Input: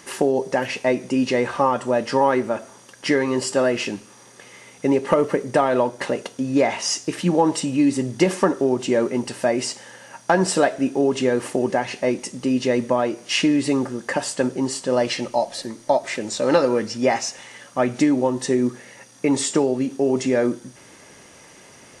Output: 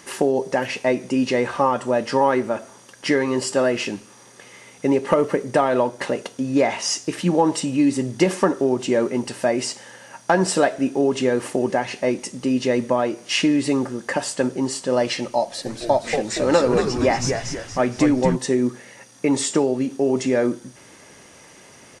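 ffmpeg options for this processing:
-filter_complex "[0:a]asplit=3[a][b][c];[a]afade=t=out:st=15.65:d=0.02[d];[b]asplit=7[e][f][g][h][i][j][k];[f]adelay=234,afreqshift=-120,volume=-5.5dB[l];[g]adelay=468,afreqshift=-240,volume=-12.2dB[m];[h]adelay=702,afreqshift=-360,volume=-19dB[n];[i]adelay=936,afreqshift=-480,volume=-25.7dB[o];[j]adelay=1170,afreqshift=-600,volume=-32.5dB[p];[k]adelay=1404,afreqshift=-720,volume=-39.2dB[q];[e][l][m][n][o][p][q]amix=inputs=7:normalize=0,afade=t=in:st=15.65:d=0.02,afade=t=out:st=18.35:d=0.02[r];[c]afade=t=in:st=18.35:d=0.02[s];[d][r][s]amix=inputs=3:normalize=0"

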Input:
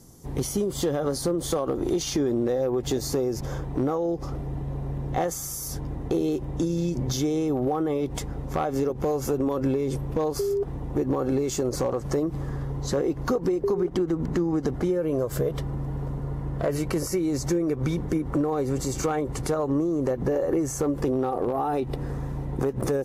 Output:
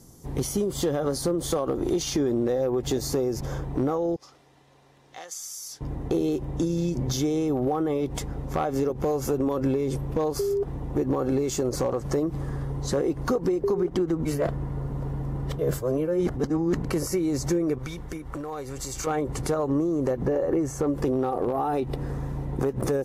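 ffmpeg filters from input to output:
-filter_complex "[0:a]asettb=1/sr,asplit=3[a][b][c];[a]atrim=end=4.164[d];[b]atrim=start=4.16:end=5.81,asetpts=PTS-STARTPTS,afade=t=in:d=0.004:c=qsin,afade=t=out:st=1.646:d=0.004:c=qsin,bandpass=f=4.8k:t=q:w=0.92[e];[c]atrim=start=5.806[f];[d][e]acrossfade=d=0.004:c1=hsin:c2=qsin[g];[g][f]acrossfade=d=0.004:c1=qsin:c2=hsin,asettb=1/sr,asplit=3[h][i][j];[h]atrim=end=12.394[k];[i]atrim=start=12.39:end=13.42,asetpts=PTS-STARTPTS,afade=t=in:d=0.004:c=qsin,afade=t=out:st=1.026:d=0.004:c=qsin,equalizer=f=9k:w=7.6:g=8.5[l];[j]atrim=start=13.416[m];[k][l]acrossfade=d=0.004:c1=hsin:c2=qsin[n];[n][m]acrossfade=d=0.004:c1=qsin:c2=hsin,asettb=1/sr,asplit=3[o][p][q];[o]atrim=end=17.784[r];[p]atrim=start=17.78:end=19.07,asetpts=PTS-STARTPTS,afade=t=in:d=0.004:c=qsin,afade=t=out:st=1.286:d=0.004:c=qsin,equalizer=f=240:w=0.38:g=-12[s];[q]atrim=start=19.066[t];[r][s]acrossfade=d=0.004:c1=hsin:c2=qsin[u];[u][t]acrossfade=d=0.004:c1=qsin:c2=hsin,asettb=1/sr,asplit=3[v][w][x];[v]atrim=end=20.254[y];[w]atrim=start=20.25:end=20.87,asetpts=PTS-STARTPTS,afade=t=in:d=0.004:c=qsin,afade=t=out:st=0.616:d=0.004:c=qsin,highshelf=f=4.4k:g=-8[z];[x]atrim=start=20.866[aa];[y][z]acrossfade=d=0.004:c1=hsin:c2=qsin[ab];[ab][aa]acrossfade=d=0.004:c1=qsin:c2=hsin,asplit=3[ac][ad][ae];[ac]atrim=end=14.252[af];[ad]atrim=start=14.248:end=16.852,asetpts=PTS-STARTPTS,areverse[ag];[ae]atrim=start=16.848[ah];[af][ag]acrossfade=d=0.004:c1=hsin:c2=hsin[ai];[ai][ah]acrossfade=d=0.004:c1=hsin:c2=hsin"

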